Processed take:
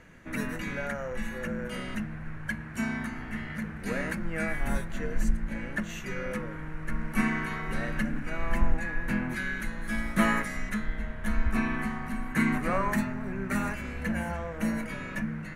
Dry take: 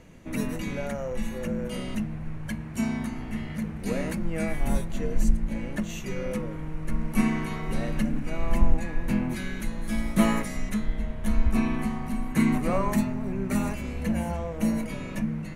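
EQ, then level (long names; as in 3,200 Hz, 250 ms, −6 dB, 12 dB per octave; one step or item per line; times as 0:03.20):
parametric band 1,600 Hz +13.5 dB 0.88 octaves
−4.5 dB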